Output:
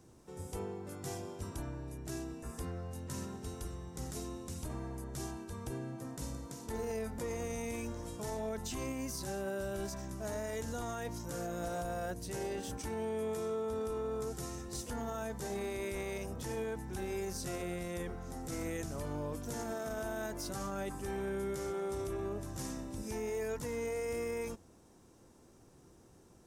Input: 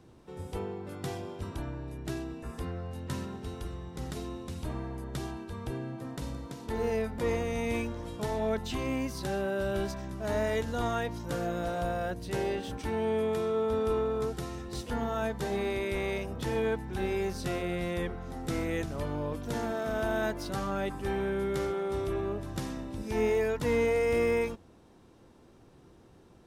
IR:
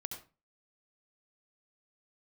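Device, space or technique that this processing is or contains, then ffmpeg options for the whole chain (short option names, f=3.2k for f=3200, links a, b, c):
over-bright horn tweeter: -af "highshelf=f=4.9k:t=q:w=1.5:g=8.5,alimiter=level_in=2.5dB:limit=-24dB:level=0:latency=1:release=29,volume=-2.5dB,volume=-4dB"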